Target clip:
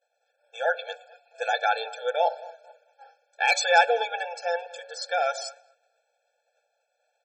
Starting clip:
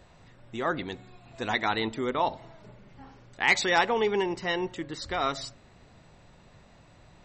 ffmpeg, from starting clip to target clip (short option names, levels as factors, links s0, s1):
-filter_complex "[0:a]asplit=2[s0][s1];[s1]adelay=218,lowpass=f=2700:p=1,volume=0.112,asplit=2[s2][s3];[s3]adelay=218,lowpass=f=2700:p=1,volume=0.43,asplit=2[s4][s5];[s5]adelay=218,lowpass=f=2700:p=1,volume=0.43[s6];[s0][s2][s4][s6]amix=inputs=4:normalize=0,agate=range=0.0224:threshold=0.00794:ratio=3:detection=peak,afftfilt=real='re*eq(mod(floor(b*sr/1024/450),2),1)':imag='im*eq(mod(floor(b*sr/1024/450),2),1)':win_size=1024:overlap=0.75,volume=2.11"